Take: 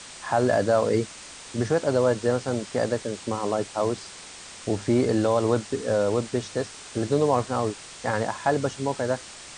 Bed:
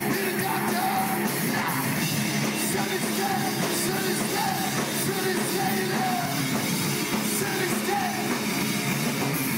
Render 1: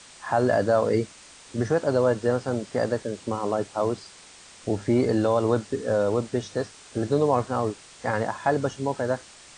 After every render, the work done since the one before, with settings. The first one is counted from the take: noise print and reduce 6 dB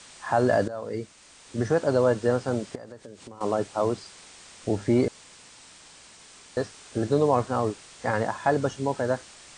0.68–1.74 fade in, from -17.5 dB; 2.75–3.41 compressor, threshold -40 dBFS; 5.08–6.57 room tone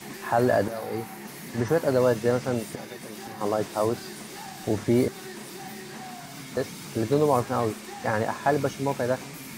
add bed -14.5 dB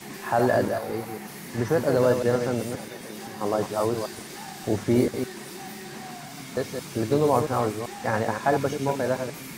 reverse delay 0.131 s, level -6 dB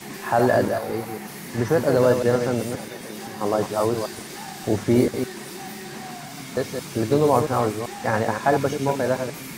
gain +3 dB

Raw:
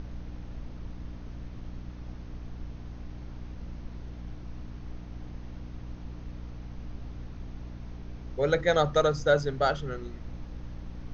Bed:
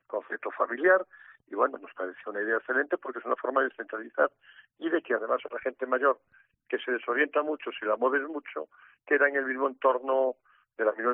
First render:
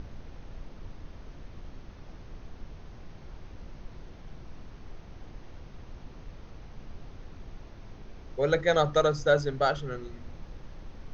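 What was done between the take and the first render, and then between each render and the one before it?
de-hum 60 Hz, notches 5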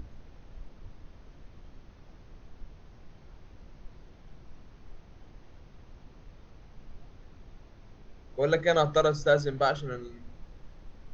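noise print and reduce 6 dB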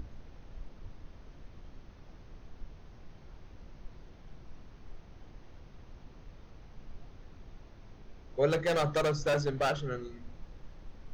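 8.5–9.76 overloaded stage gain 25 dB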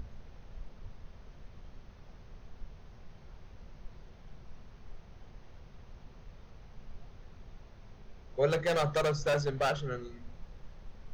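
bell 300 Hz -12.5 dB 0.22 oct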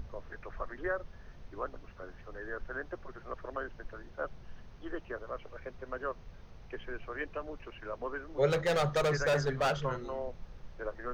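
add bed -13 dB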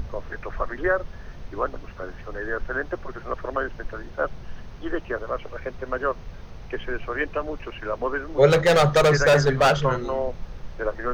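gain +12 dB

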